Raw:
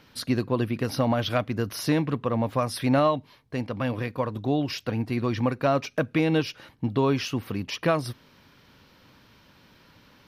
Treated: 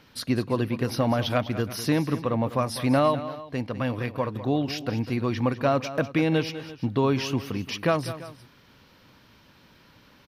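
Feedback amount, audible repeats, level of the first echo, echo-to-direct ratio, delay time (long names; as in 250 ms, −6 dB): repeats not evenly spaced, 2, −13.5 dB, −12.5 dB, 200 ms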